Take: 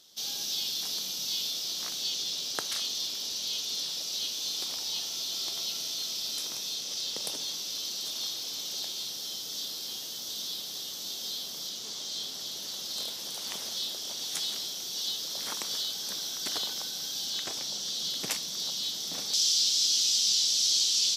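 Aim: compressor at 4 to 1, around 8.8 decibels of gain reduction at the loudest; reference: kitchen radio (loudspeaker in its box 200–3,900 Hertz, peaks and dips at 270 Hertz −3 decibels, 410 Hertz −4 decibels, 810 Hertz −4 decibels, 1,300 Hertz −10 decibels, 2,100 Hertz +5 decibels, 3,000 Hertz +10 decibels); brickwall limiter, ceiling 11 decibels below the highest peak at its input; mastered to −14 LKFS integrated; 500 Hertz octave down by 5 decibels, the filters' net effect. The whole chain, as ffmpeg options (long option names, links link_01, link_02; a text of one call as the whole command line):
ffmpeg -i in.wav -af "equalizer=frequency=500:width_type=o:gain=-3.5,acompressor=threshold=-33dB:ratio=4,alimiter=level_in=4dB:limit=-24dB:level=0:latency=1,volume=-4dB,highpass=200,equalizer=frequency=270:width_type=q:width=4:gain=-3,equalizer=frequency=410:width_type=q:width=4:gain=-4,equalizer=frequency=810:width_type=q:width=4:gain=-4,equalizer=frequency=1300:width_type=q:width=4:gain=-10,equalizer=frequency=2100:width_type=q:width=4:gain=5,equalizer=frequency=3000:width_type=q:width=4:gain=10,lowpass=frequency=3900:width=0.5412,lowpass=frequency=3900:width=1.3066,volume=22.5dB" out.wav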